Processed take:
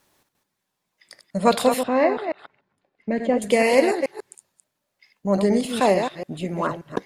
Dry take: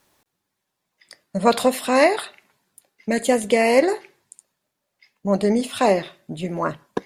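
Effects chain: reverse delay 0.145 s, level -7 dB; 1.83–3.42 tape spacing loss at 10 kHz 35 dB; gain -1 dB

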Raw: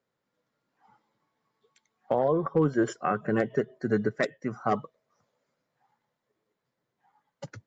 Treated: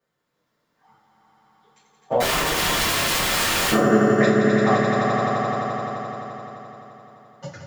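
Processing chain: swelling echo 86 ms, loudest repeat 5, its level -5 dB; 2.2–3.71 wrapped overs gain 23 dB; two-slope reverb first 0.34 s, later 1.8 s, from -27 dB, DRR -9.5 dB; gain -4 dB

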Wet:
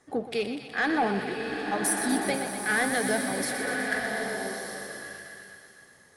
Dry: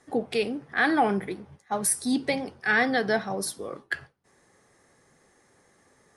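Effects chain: soft clip -16 dBFS, distortion -19 dB; thinning echo 0.123 s, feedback 79%, high-pass 720 Hz, level -8.5 dB; bloom reverb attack 1.21 s, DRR 2.5 dB; gain -2 dB

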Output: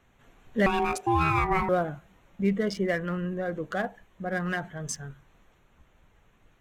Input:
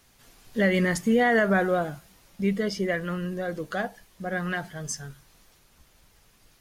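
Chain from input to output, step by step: Wiener smoothing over 9 samples; 0.66–1.69 ring modulator 570 Hz

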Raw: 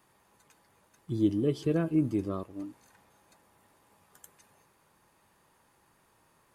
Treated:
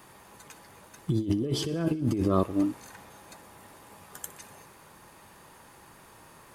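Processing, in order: negative-ratio compressor -35 dBFS, ratio -1; thin delay 61 ms, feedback 71%, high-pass 1500 Hz, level -18 dB; gain +8 dB

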